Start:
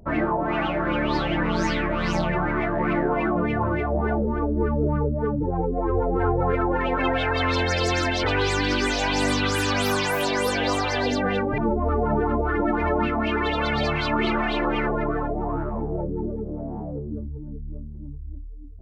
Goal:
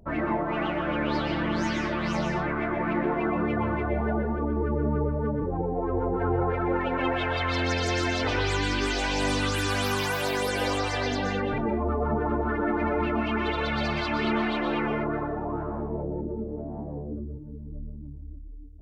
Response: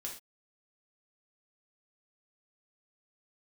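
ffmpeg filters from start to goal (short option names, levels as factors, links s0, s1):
-filter_complex "[0:a]asplit=2[s0][s1];[1:a]atrim=start_sample=2205,adelay=123[s2];[s1][s2]afir=irnorm=-1:irlink=0,volume=0.75[s3];[s0][s3]amix=inputs=2:normalize=0,volume=0.562"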